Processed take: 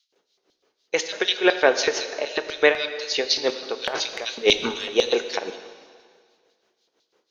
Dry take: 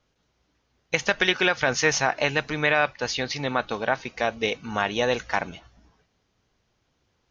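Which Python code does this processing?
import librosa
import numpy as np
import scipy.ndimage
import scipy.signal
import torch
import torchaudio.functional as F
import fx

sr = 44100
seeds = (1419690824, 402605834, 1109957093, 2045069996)

y = fx.filter_lfo_highpass(x, sr, shape='square', hz=4.0, low_hz=400.0, high_hz=4000.0, q=3.3)
y = fx.high_shelf(y, sr, hz=5500.0, db=-9.5, at=(1.29, 2.5))
y = fx.transient(y, sr, attack_db=-9, sustain_db=12, at=(3.84, 4.94))
y = y * (1.0 - 0.81 / 2.0 + 0.81 / 2.0 * np.cos(2.0 * np.pi * 6.0 * (np.arange(len(y)) / sr)))
y = fx.rev_plate(y, sr, seeds[0], rt60_s=1.9, hf_ratio=1.0, predelay_ms=0, drr_db=9.0)
y = y * 10.0 ** (4.0 / 20.0)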